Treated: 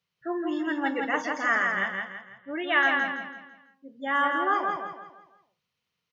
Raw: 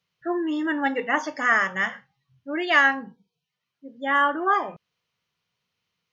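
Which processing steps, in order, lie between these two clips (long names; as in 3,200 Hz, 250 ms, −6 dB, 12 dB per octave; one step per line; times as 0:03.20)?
0:01.55–0:02.83: Chebyshev low-pass filter 3,900 Hz, order 10
on a send: repeating echo 166 ms, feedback 39%, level −4 dB
on the sum: level −4.5 dB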